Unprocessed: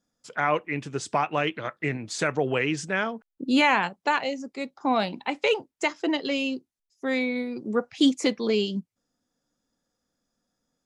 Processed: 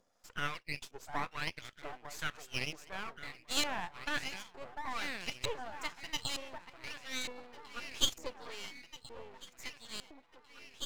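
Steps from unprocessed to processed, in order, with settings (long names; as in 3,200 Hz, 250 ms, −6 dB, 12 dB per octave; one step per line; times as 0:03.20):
delay that swaps between a low-pass and a high-pass 699 ms, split 1,100 Hz, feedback 72%, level −6 dB
in parallel at −1 dB: upward compression, threshold −25 dBFS
on the sum: dynamic equaliser 7,200 Hz, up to +6 dB, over −44 dBFS, Q 1.1
auto-filter band-pass saw up 1.1 Hz 490–4,200 Hz
first-order pre-emphasis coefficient 0.9
half-wave rectification
level +4.5 dB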